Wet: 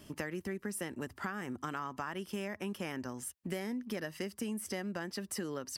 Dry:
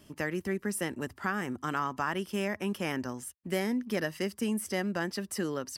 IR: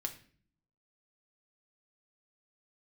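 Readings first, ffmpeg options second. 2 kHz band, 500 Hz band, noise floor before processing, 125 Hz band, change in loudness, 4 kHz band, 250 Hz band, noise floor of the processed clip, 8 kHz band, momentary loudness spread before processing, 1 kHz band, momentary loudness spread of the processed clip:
-7.0 dB, -6.5 dB, -59 dBFS, -6.0 dB, -6.5 dB, -5.5 dB, -6.5 dB, -61 dBFS, -3.0 dB, 4 LU, -7.0 dB, 2 LU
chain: -af "acompressor=threshold=0.0112:ratio=4,volume=1.33"

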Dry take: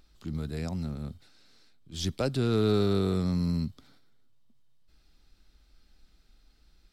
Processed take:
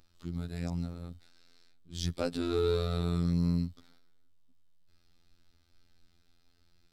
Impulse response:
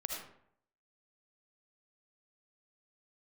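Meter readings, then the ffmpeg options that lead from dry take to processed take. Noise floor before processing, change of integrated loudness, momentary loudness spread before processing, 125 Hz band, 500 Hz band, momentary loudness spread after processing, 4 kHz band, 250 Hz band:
-64 dBFS, -3.0 dB, 13 LU, -2.5 dB, -3.5 dB, 12 LU, -3.5 dB, -4.0 dB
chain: -af "afftfilt=real='hypot(re,im)*cos(PI*b)':imag='0':win_size=2048:overlap=0.75"

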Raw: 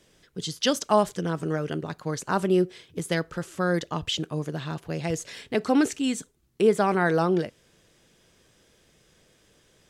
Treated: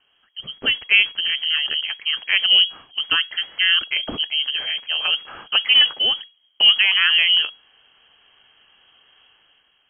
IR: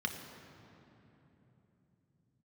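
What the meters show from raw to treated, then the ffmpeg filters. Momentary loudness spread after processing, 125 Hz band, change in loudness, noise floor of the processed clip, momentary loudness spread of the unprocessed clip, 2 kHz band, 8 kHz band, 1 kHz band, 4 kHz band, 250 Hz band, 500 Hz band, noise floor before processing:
10 LU, under -20 dB, +9.5 dB, -63 dBFS, 11 LU, +14.0 dB, under -40 dB, -7.0 dB, +21.0 dB, -18.0 dB, -17.0 dB, -63 dBFS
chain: -af "aeval=exprs='if(lt(val(0),0),0.708*val(0),val(0))':c=same,dynaudnorm=f=160:g=7:m=2.66,lowpass=f=2800:t=q:w=0.5098,lowpass=f=2800:t=q:w=0.6013,lowpass=f=2800:t=q:w=0.9,lowpass=f=2800:t=q:w=2.563,afreqshift=-3300"

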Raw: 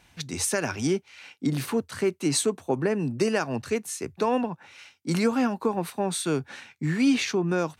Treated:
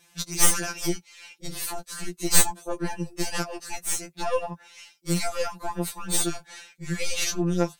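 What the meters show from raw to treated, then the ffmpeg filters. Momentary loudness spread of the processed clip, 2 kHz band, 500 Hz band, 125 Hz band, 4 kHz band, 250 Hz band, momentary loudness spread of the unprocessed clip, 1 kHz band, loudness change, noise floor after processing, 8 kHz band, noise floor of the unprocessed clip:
17 LU, -0.5 dB, -5.5 dB, -2.0 dB, +3.0 dB, -6.0 dB, 9 LU, -1.5 dB, 0.0 dB, -60 dBFS, +7.0 dB, -62 dBFS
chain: -af "bass=f=250:g=-4,treble=f=4000:g=11,aeval=exprs='0.794*(cos(1*acos(clip(val(0)/0.794,-1,1)))-cos(1*PI/2))+0.158*(cos(2*acos(clip(val(0)/0.794,-1,1)))-cos(2*PI/2))+0.355*(cos(4*acos(clip(val(0)/0.794,-1,1)))-cos(4*PI/2))':c=same,afftfilt=real='re*2.83*eq(mod(b,8),0)':imag='im*2.83*eq(mod(b,8),0)':win_size=2048:overlap=0.75,volume=0.891"

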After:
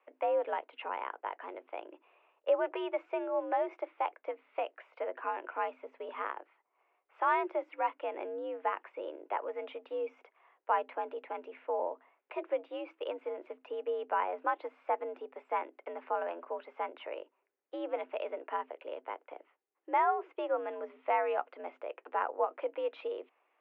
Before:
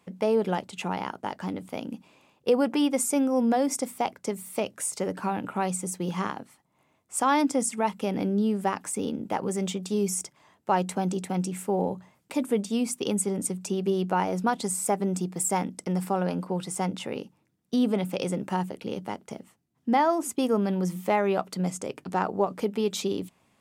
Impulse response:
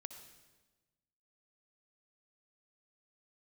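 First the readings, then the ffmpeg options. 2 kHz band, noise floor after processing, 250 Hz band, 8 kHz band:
-4.5 dB, -80 dBFS, -21.5 dB, under -40 dB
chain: -af "highpass=f=370:t=q:w=0.5412,highpass=f=370:t=q:w=1.307,lowpass=f=2600:t=q:w=0.5176,lowpass=f=2600:t=q:w=0.7071,lowpass=f=2600:t=q:w=1.932,afreqshift=75,volume=0.562"

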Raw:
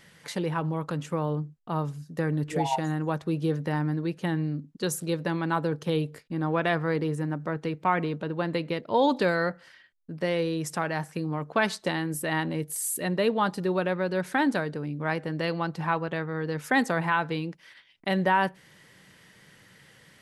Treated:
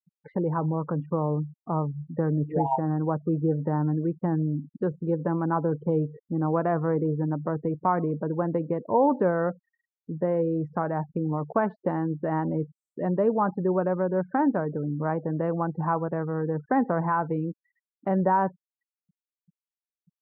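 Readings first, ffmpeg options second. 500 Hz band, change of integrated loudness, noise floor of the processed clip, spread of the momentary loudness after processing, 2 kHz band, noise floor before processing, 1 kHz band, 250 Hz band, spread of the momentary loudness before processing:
+2.0 dB, +1.5 dB, under -85 dBFS, 6 LU, -9.5 dB, -57 dBFS, +1.0 dB, +2.5 dB, 7 LU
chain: -filter_complex "[0:a]afftfilt=real='re*gte(hypot(re,im),0.0178)':imag='im*gte(hypot(re,im),0.0178)':win_size=1024:overlap=0.75,lowpass=f=1200:w=0.5412,lowpass=f=1200:w=1.3066,asplit=2[s0][s1];[s1]acompressor=threshold=0.0251:ratio=6,volume=0.75[s2];[s0][s2]amix=inputs=2:normalize=0"

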